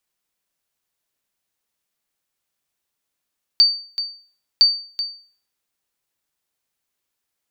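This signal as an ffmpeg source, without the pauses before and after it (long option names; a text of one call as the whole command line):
ffmpeg -f lavfi -i "aevalsrc='0.531*(sin(2*PI*4600*mod(t,1.01))*exp(-6.91*mod(t,1.01)/0.44)+0.251*sin(2*PI*4600*max(mod(t,1.01)-0.38,0))*exp(-6.91*max(mod(t,1.01)-0.38,0)/0.44))':duration=2.02:sample_rate=44100" out.wav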